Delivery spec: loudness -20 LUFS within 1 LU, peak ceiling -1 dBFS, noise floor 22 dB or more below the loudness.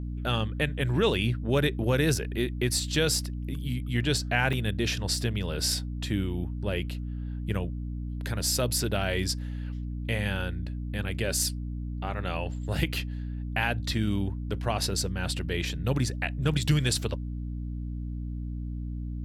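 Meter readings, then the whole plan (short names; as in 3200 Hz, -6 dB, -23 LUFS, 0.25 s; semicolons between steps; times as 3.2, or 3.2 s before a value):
dropouts 1; longest dropout 2.6 ms; hum 60 Hz; harmonics up to 300 Hz; hum level -31 dBFS; loudness -29.5 LUFS; peak -11.0 dBFS; loudness target -20.0 LUFS
-> interpolate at 4.53, 2.6 ms; notches 60/120/180/240/300 Hz; gain +9.5 dB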